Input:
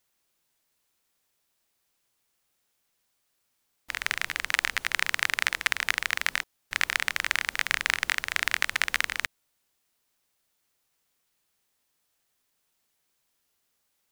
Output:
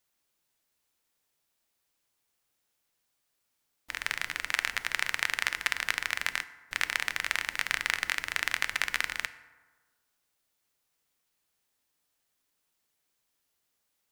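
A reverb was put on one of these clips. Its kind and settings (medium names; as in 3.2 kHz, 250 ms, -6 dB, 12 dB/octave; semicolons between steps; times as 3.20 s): FDN reverb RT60 1.4 s, low-frequency decay 0.95×, high-frequency decay 0.45×, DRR 12 dB; trim -3.5 dB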